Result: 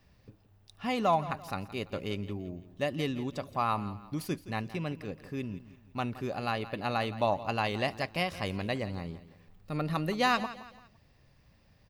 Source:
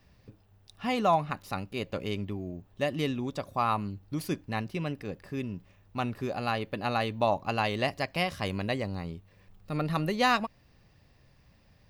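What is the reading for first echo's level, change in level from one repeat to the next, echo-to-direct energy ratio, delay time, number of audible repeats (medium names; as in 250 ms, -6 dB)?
-15.5 dB, -8.5 dB, -15.0 dB, 169 ms, 3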